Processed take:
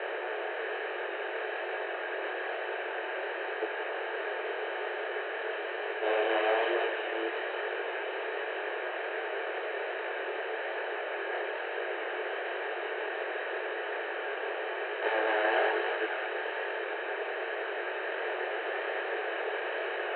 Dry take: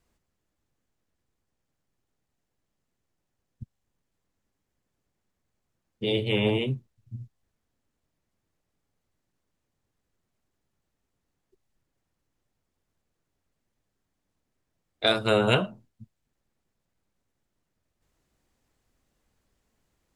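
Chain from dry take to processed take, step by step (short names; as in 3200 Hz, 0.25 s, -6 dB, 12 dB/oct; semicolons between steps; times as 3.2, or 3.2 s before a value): per-bin compression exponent 0.2; bell 640 Hz -12 dB 1.3 oct; soft clip -19 dBFS, distortion -12 dB; mistuned SSB +220 Hz 180–2100 Hz; on a send: thinning echo 0.18 s, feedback 84%, high-pass 720 Hz, level -5 dB; on the sum: chorus voices 2, 1.1 Hz, delay 23 ms, depth 4.1 ms; gain +3.5 dB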